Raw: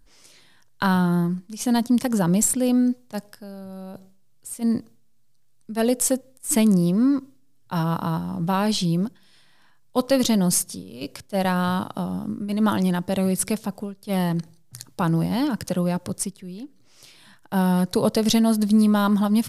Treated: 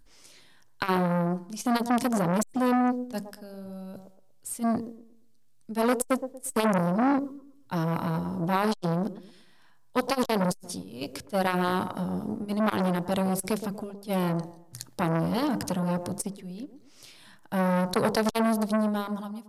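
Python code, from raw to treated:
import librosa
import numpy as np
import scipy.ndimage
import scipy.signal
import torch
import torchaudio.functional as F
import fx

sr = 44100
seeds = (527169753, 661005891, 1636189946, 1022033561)

y = fx.fade_out_tail(x, sr, length_s=1.17)
y = fx.hum_notches(y, sr, base_hz=50, count=4)
y = fx.echo_wet_bandpass(y, sr, ms=117, feedback_pct=34, hz=550.0, wet_db=-9)
y = fx.transformer_sat(y, sr, knee_hz=1600.0)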